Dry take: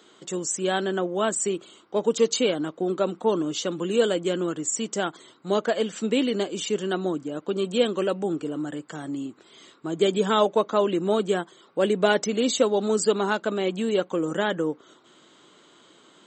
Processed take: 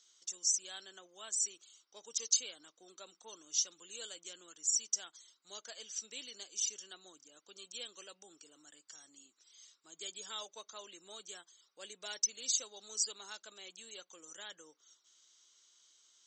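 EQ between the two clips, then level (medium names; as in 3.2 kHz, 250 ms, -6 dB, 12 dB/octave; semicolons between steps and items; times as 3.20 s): band-pass filter 5.8 kHz, Q 8.5; +7.5 dB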